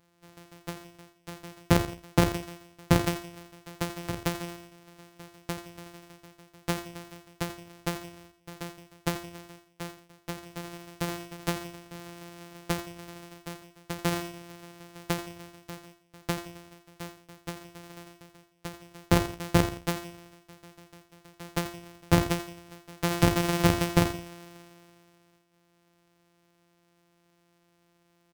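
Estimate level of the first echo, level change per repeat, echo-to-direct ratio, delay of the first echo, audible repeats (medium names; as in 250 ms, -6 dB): -12.0 dB, -7.5 dB, -11.5 dB, 84 ms, 2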